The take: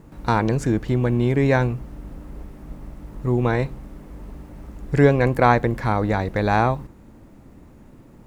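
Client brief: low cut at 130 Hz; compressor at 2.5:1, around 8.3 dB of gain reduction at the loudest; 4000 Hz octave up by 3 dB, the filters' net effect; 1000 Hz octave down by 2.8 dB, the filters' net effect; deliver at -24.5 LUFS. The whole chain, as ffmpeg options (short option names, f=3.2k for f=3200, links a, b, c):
-af "highpass=130,equalizer=f=1k:t=o:g=-4,equalizer=f=4k:t=o:g=3.5,acompressor=threshold=-23dB:ratio=2.5,volume=3dB"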